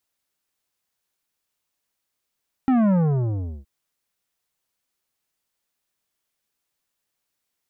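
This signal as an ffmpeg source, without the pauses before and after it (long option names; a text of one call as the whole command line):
ffmpeg -f lavfi -i "aevalsrc='0.15*clip((0.97-t)/0.74,0,1)*tanh(3.76*sin(2*PI*270*0.97/log(65/270)*(exp(log(65/270)*t/0.97)-1)))/tanh(3.76)':duration=0.97:sample_rate=44100" out.wav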